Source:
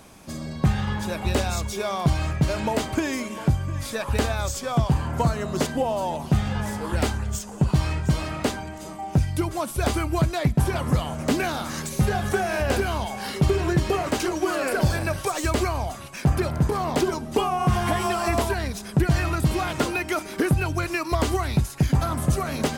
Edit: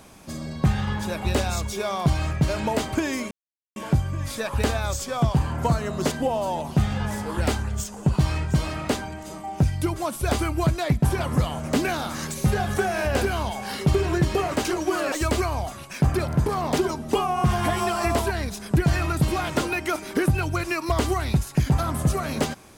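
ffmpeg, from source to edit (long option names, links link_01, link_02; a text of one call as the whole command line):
ffmpeg -i in.wav -filter_complex "[0:a]asplit=3[link_01][link_02][link_03];[link_01]atrim=end=3.31,asetpts=PTS-STARTPTS,afade=type=out:start_time=3.306:duration=0.004:curve=hsin,apad=pad_dur=0.45[link_04];[link_02]atrim=start=3.31:end=14.672,asetpts=PTS-STARTPTS,afade=type=in:duration=0.004:curve=hsin[link_05];[link_03]atrim=start=15.348[link_06];[link_04][link_05]concat=n=2:v=0:a=1[link_07];[link_07][link_06]acrossfade=duration=0.004:curve1=hsin:curve2=hsin" out.wav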